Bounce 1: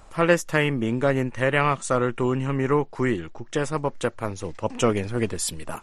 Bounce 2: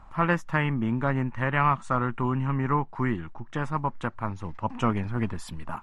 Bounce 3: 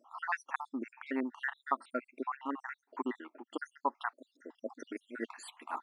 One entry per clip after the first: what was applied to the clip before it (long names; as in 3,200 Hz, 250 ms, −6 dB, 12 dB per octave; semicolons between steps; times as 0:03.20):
drawn EQ curve 220 Hz 0 dB, 480 Hz −13 dB, 950 Hz +3 dB, 8,200 Hz −20 dB
time-frequency cells dropped at random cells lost 67%; linear-phase brick-wall high-pass 240 Hz; level −2 dB